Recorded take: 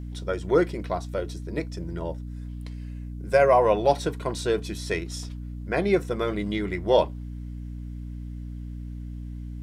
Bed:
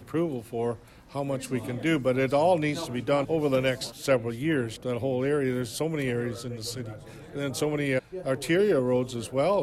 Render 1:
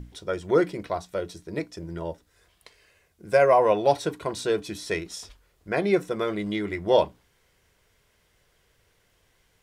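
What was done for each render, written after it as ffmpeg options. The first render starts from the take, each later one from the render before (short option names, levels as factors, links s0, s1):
-af "bandreject=f=60:t=h:w=6,bandreject=f=120:t=h:w=6,bandreject=f=180:t=h:w=6,bandreject=f=240:t=h:w=6,bandreject=f=300:t=h:w=6"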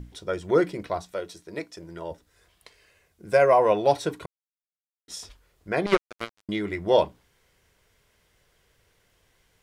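-filter_complex "[0:a]asettb=1/sr,asplit=3[s0][s1][s2];[s0]atrim=end=1.124[s3];[s1]atrim=start=1.12:end=2.11,asetpts=PTS-STARTPTS,afade=t=in:d=0.004:c=qsin,afade=t=out:st=0.986:d=0.004:c=qsin,lowshelf=f=250:g=-11.5[s4];[s2]atrim=start=2.106[s5];[s3][s4]acrossfade=d=0.004:c1=hsin:c2=qsin[s6];[s6][s5]acrossfade=d=0.004:c1=qsin:c2=hsin,asettb=1/sr,asplit=3[s7][s8][s9];[s7]atrim=end=5.864[s10];[s8]atrim=start=5.86:end=6.49,asetpts=PTS-STARTPTS,afade=t=in:d=0.004:c=qsin,afade=t=out:st=0.626:d=0.004:c=qsin,acrusher=bits=2:mix=0:aa=0.5[s11];[s9]atrim=start=6.486[s12];[s10][s11]acrossfade=d=0.004:c1=hsin:c2=qsin[s13];[s13][s12]acrossfade=d=0.004:c1=qsin:c2=hsin,asplit=3[s14][s15][s16];[s14]atrim=end=4.26,asetpts=PTS-STARTPTS,afade=t=out:st=4.256:d=0.004:c=hsin[s17];[s15]atrim=start=4.26:end=5.08,asetpts=PTS-STARTPTS,volume=0[s18];[s16]atrim=start=5.08,asetpts=PTS-STARTPTS,afade=t=in:d=0.004:c=hsin[s19];[s17][s18][s19]concat=n=3:v=0:a=1"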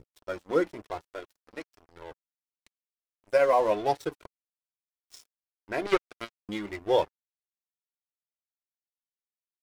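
-af "aeval=exprs='sgn(val(0))*max(abs(val(0))-0.015,0)':c=same,flanger=delay=2.2:depth=1.8:regen=-29:speed=1:shape=triangular"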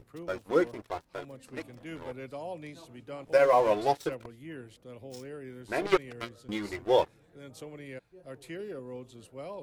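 -filter_complex "[1:a]volume=0.141[s0];[0:a][s0]amix=inputs=2:normalize=0"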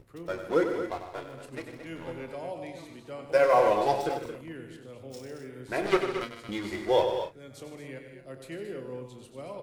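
-filter_complex "[0:a]asplit=2[s0][s1];[s1]adelay=30,volume=0.282[s2];[s0][s2]amix=inputs=2:normalize=0,asplit=2[s3][s4];[s4]aecho=0:1:96|151|224|261:0.376|0.266|0.335|0.178[s5];[s3][s5]amix=inputs=2:normalize=0"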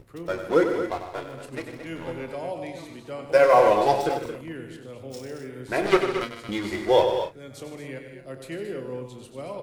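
-af "volume=1.78"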